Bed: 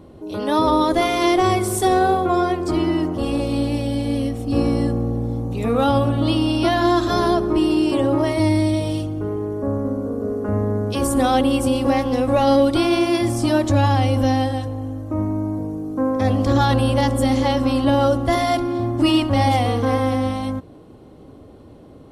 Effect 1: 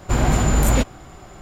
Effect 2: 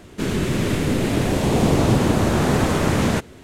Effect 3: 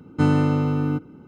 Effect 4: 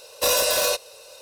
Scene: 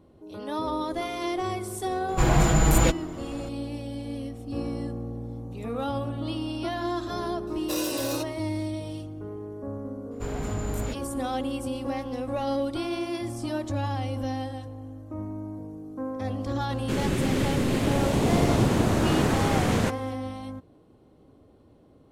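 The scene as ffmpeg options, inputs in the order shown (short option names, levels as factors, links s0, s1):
-filter_complex "[1:a]asplit=2[s0][s1];[0:a]volume=0.237[s2];[s0]aecho=1:1:6.1:0.8,atrim=end=1.41,asetpts=PTS-STARTPTS,volume=0.631,afade=t=in:d=0.004:c=hsin,afade=t=out:st=1.406:d=0.004:c=hsin,adelay=2080[s3];[4:a]atrim=end=1.21,asetpts=PTS-STARTPTS,volume=0.251,afade=t=in:d=0.004:c=hsin,afade=t=out:st=1.206:d=0.004:c=hsin,adelay=7470[s4];[s1]atrim=end=1.41,asetpts=PTS-STARTPTS,volume=0.168,afade=t=in:d=0.004:c=hsin,afade=t=out:st=1.406:d=0.004:c=hsin,adelay=10110[s5];[2:a]atrim=end=3.43,asetpts=PTS-STARTPTS,volume=0.562,afade=t=in:d=0.004:c=hsin,afade=t=out:st=3.426:d=0.004:c=hsin,adelay=16700[s6];[s2][s3][s4][s5][s6]amix=inputs=5:normalize=0"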